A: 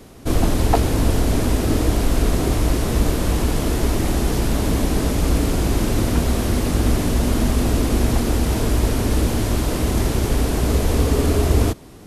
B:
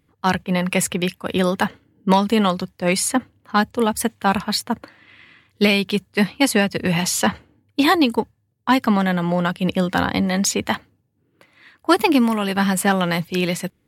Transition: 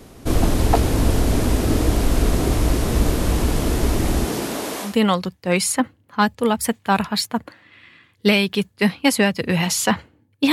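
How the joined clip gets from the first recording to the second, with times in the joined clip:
A
4.24–4.97 s: high-pass 140 Hz -> 880 Hz
4.89 s: go over to B from 2.25 s, crossfade 0.16 s

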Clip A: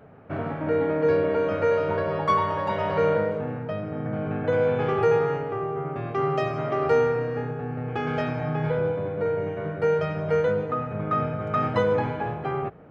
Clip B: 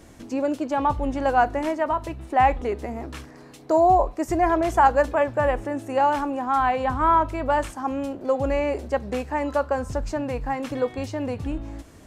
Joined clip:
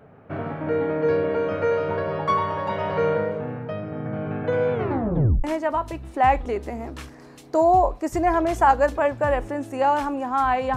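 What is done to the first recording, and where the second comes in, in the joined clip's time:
clip A
4.73 s: tape stop 0.71 s
5.44 s: go over to clip B from 1.60 s

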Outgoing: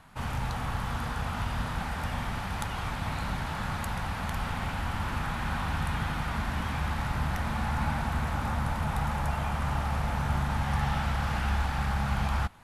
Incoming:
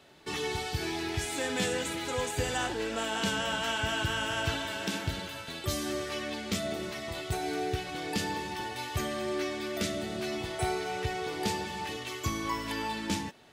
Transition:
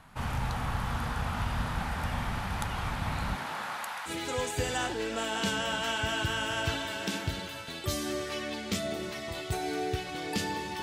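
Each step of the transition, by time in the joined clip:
outgoing
3.34–4.11 s: high-pass 210 Hz -> 1.1 kHz
4.08 s: go over to incoming from 1.88 s, crossfade 0.06 s

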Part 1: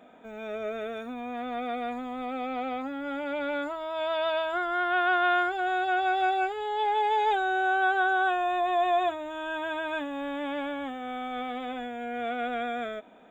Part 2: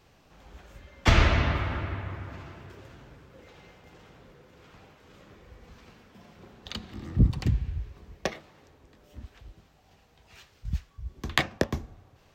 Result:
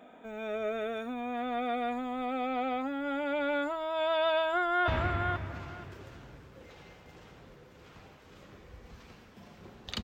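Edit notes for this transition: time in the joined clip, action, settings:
part 1
4.37–4.88 s: echo throw 480 ms, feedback 15%, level -5 dB
4.88 s: go over to part 2 from 1.66 s

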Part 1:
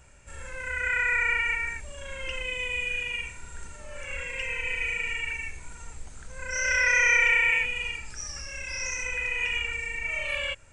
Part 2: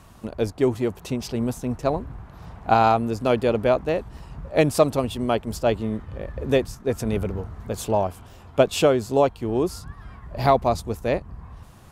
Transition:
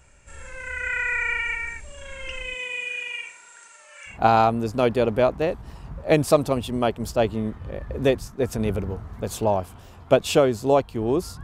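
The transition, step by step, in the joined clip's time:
part 1
2.54–4.19 s: high-pass 220 Hz -> 1.4 kHz
4.12 s: go over to part 2 from 2.59 s, crossfade 0.14 s

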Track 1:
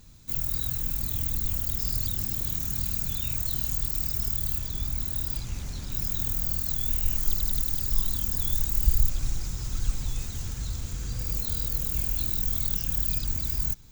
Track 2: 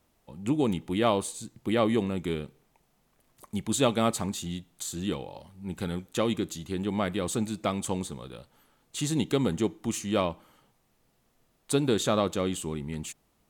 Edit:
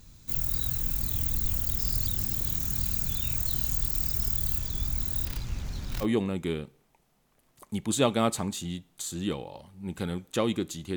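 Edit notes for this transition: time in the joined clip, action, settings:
track 1
5.25–6.06 s: median filter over 5 samples
6.03 s: go over to track 2 from 1.84 s, crossfade 0.06 s

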